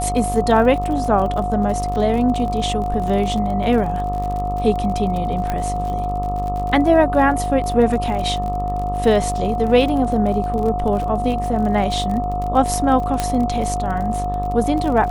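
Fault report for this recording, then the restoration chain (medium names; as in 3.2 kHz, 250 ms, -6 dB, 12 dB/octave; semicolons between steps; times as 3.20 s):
buzz 50 Hz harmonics 26 -25 dBFS
crackle 43 per s -26 dBFS
whine 720 Hz -22 dBFS
5.50 s: pop -10 dBFS
13.20 s: pop -5 dBFS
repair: de-click; de-hum 50 Hz, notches 26; band-stop 720 Hz, Q 30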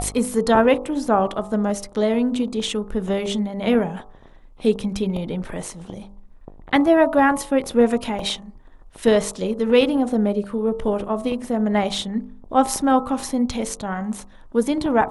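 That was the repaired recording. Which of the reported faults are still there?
13.20 s: pop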